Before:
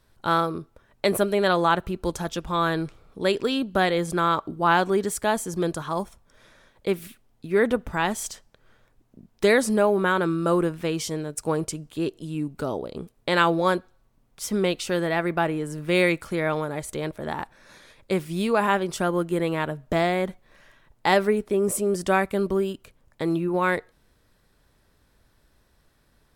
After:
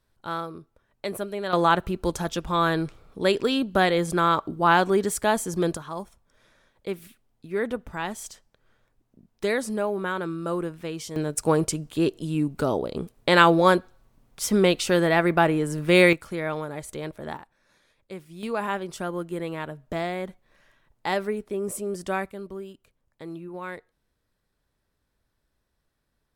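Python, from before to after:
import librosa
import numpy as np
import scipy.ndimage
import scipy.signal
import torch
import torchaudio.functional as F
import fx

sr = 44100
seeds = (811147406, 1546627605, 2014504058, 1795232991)

y = fx.gain(x, sr, db=fx.steps((0.0, -9.0), (1.53, 1.0), (5.77, -6.5), (11.16, 4.0), (16.13, -4.0), (17.37, -14.0), (18.43, -6.5), (22.31, -13.0)))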